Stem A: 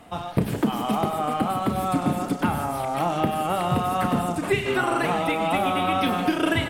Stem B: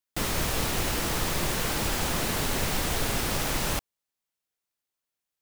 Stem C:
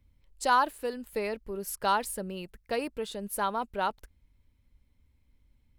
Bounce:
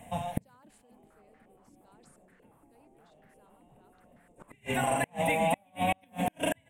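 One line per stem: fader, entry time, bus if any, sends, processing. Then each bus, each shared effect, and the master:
-5.0 dB, 0.00 s, no send, treble shelf 9.9 kHz +8 dB; static phaser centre 1.3 kHz, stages 6
-4.0 dB, 0.75 s, no send, peaking EQ 130 Hz -13 dB 0.73 oct; step-sequenced low-pass 8.5 Hz 300–1800 Hz
-3.5 dB, 0.00 s, no send, Bessel low-pass 4.2 kHz; decay stretcher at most 32 dB/s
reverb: none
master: graphic EQ 125/250/500/2000/8000 Hz +5/+9/+5/+3/+10 dB; inverted gate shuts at -16 dBFS, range -38 dB

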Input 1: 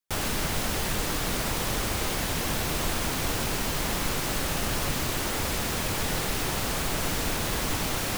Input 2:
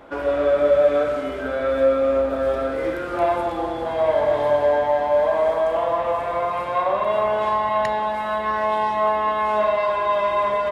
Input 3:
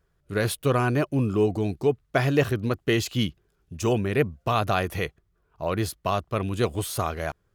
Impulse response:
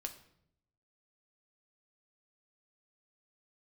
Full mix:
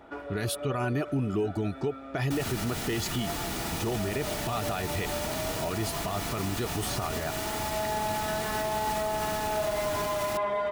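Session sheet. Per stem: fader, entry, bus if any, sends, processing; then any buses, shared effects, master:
-3.5 dB, 2.20 s, no send, none
-4.5 dB, 0.00 s, no send, auto duck -11 dB, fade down 0.20 s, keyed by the third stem
+2.5 dB, 0.00 s, no send, level-controlled noise filter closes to 1.9 kHz, open at -22.5 dBFS; compression, threshold -23 dBFS, peak gain reduction 8 dB; reverb removal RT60 0.53 s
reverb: none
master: comb of notches 530 Hz; peak limiter -21 dBFS, peak gain reduction 8.5 dB

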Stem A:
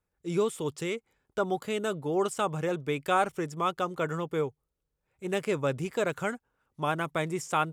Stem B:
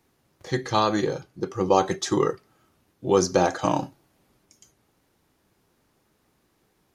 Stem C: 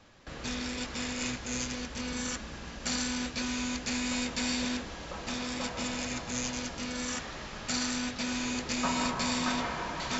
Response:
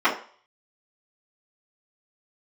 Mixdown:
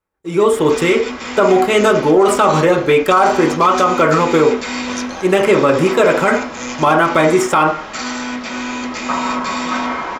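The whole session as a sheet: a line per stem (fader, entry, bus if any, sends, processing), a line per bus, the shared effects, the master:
+1.0 dB, 0.00 s, send -13 dB, waveshaping leveller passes 1; level rider gain up to 10 dB
+0.5 dB, 1.75 s, no send, amplifier tone stack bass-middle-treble 10-0-10
+2.0 dB, 0.25 s, send -10 dB, none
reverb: on, RT60 0.45 s, pre-delay 3 ms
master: peak limiter -3 dBFS, peak gain reduction 10.5 dB

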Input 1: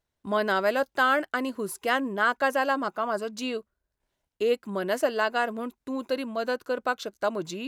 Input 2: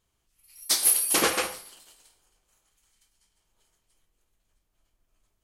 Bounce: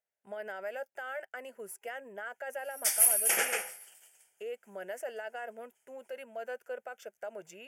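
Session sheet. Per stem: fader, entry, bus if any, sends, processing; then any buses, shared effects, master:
-6.5 dB, 0.00 s, no send, peak limiter -22 dBFS, peak gain reduction 11 dB
-1.0 dB, 2.15 s, no send, peaking EQ 550 Hz -6.5 dB 1 oct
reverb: none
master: high-pass 310 Hz 12 dB/octave; static phaser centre 1.1 kHz, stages 6

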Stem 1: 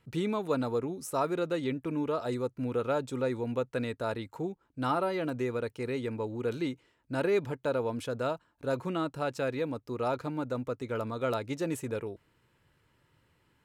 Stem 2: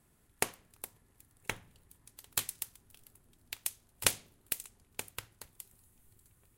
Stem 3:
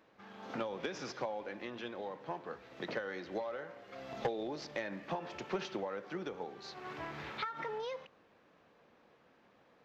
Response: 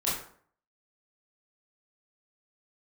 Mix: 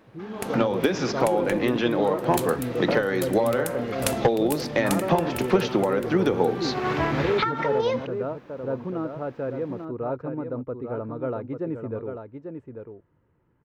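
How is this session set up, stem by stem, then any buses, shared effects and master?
-16.0 dB, 0.00 s, no send, echo send -7 dB, Chebyshev low-pass 1.4 kHz; peaking EQ 430 Hz +4.5 dB 1.8 oct
-11.0 dB, 0.00 s, no send, echo send -5 dB, none
+3.0 dB, 0.00 s, no send, no echo send, gain riding within 4 dB 0.5 s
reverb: none
echo: delay 843 ms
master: bass shelf 420 Hz +8 dB; level rider gain up to 11 dB

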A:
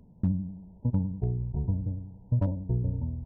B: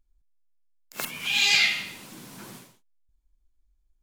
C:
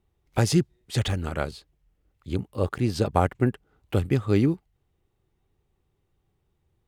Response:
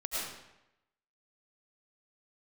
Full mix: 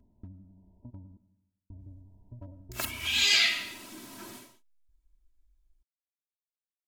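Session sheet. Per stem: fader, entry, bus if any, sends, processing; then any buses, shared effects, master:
-11.0 dB, 0.00 s, muted 1.17–1.70 s, send -18.5 dB, compression 2:1, threshold -39 dBFS, peak gain reduction 10 dB
-3.5 dB, 1.80 s, no send, none
mute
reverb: on, RT60 0.90 s, pre-delay 65 ms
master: comb 3.1 ms, depth 80%

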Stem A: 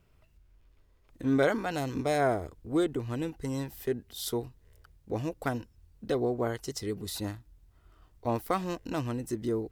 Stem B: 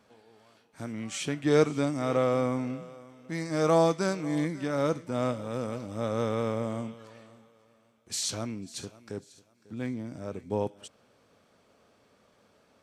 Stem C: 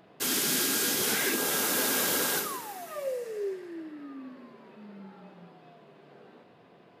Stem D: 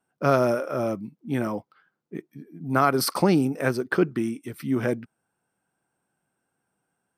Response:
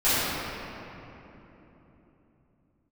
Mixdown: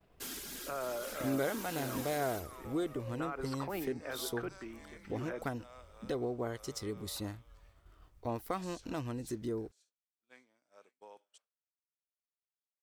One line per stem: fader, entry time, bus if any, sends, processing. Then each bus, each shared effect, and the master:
-1.0 dB, 0.00 s, bus A, no send, none
-14.0 dB, 0.50 s, bus A, no send, high-pass 790 Hz 12 dB/octave; compression 2.5:1, threshold -36 dBFS, peak gain reduction 8.5 dB
-7.0 dB, 0.00 s, bus B, no send, single-diode clipper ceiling -27 dBFS; reverb removal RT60 0.66 s; auto duck -7 dB, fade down 0.45 s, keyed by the first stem
-11.0 dB, 0.45 s, bus B, no send, three-band isolator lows -15 dB, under 440 Hz, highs -24 dB, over 3.4 kHz
bus A: 0.0 dB, compression 1.5:1, threshold -43 dBFS, peak gain reduction 8 dB
bus B: 0.0 dB, peak limiter -30 dBFS, peak gain reduction 10 dB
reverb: none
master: expander -58 dBFS

